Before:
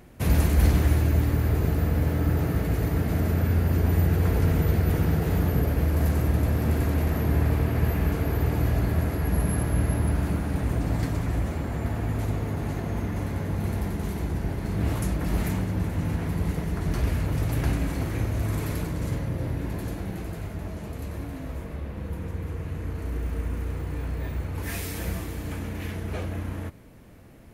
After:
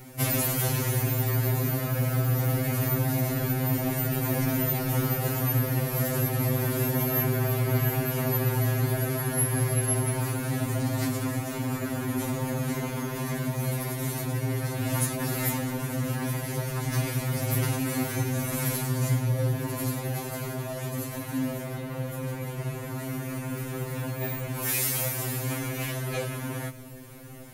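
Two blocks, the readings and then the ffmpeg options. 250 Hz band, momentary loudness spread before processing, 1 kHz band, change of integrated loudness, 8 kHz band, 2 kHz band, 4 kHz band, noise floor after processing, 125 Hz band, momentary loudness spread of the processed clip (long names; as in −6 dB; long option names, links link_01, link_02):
−1.5 dB, 11 LU, +1.5 dB, −1.0 dB, +10.0 dB, +2.5 dB, +5.0 dB, −36 dBFS, −2.0 dB, 8 LU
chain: -filter_complex "[0:a]highshelf=frequency=5900:gain=12,asplit=2[link_01][link_02];[link_02]acompressor=threshold=-30dB:ratio=8,volume=3dB[link_03];[link_01][link_03]amix=inputs=2:normalize=0,afftfilt=real='re*2.45*eq(mod(b,6),0)':imag='im*2.45*eq(mod(b,6),0)':win_size=2048:overlap=0.75"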